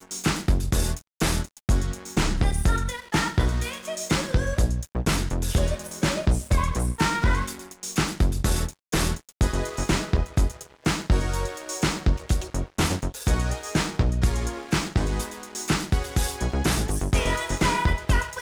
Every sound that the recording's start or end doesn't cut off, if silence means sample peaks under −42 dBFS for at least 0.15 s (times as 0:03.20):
0:01.20–0:08.73